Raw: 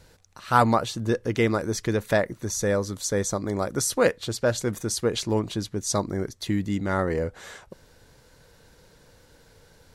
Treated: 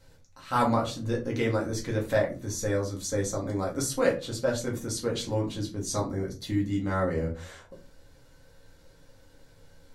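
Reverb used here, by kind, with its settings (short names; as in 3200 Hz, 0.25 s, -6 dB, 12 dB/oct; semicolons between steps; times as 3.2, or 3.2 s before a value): shoebox room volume 130 m³, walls furnished, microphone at 2.1 m; gain -9 dB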